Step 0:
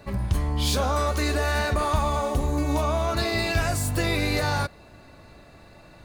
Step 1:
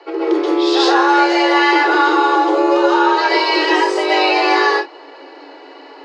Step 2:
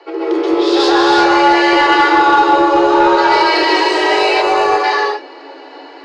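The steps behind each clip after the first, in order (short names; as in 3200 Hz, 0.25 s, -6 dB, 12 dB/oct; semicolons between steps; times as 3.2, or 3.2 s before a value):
LPF 4700 Hz 24 dB/oct; reverb, pre-delay 0.125 s, DRR -5.5 dB; frequency shift +270 Hz; gain +5 dB
non-linear reverb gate 0.38 s rising, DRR -0.5 dB; soft clip -1.5 dBFS, distortion -21 dB; spectral gain 4.42–4.83, 1500–6000 Hz -8 dB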